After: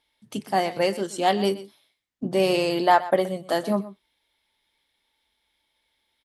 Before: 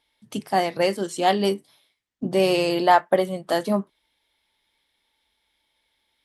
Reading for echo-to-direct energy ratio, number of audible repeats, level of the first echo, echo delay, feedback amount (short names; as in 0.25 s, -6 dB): -16.5 dB, 1, -16.5 dB, 0.123 s, no steady repeat